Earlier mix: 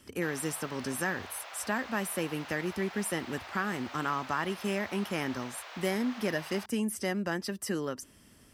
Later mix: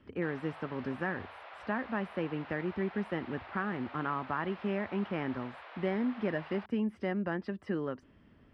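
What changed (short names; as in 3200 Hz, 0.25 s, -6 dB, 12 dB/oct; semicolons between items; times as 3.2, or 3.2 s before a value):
speech: add air absorption 74 m; master: add air absorption 430 m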